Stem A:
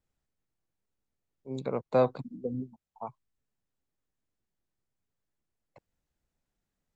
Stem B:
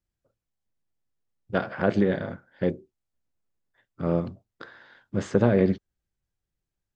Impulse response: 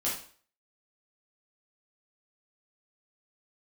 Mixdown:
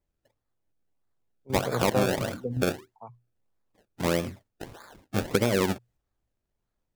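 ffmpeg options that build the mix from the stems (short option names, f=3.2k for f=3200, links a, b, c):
-filter_complex "[0:a]equalizer=f=120:w=7.8:g=13.5,volume=1dB[a];[1:a]equalizer=f=160:t=o:w=0.95:g=-6,acrusher=samples=30:mix=1:aa=0.000001:lfo=1:lforange=30:lforate=1.6,volume=3dB,asplit=2[b][c];[c]apad=whole_len=306883[d];[a][d]sidechaingate=range=-7dB:threshold=-54dB:ratio=16:detection=peak[e];[e][b]amix=inputs=2:normalize=0,acompressor=threshold=-19dB:ratio=6"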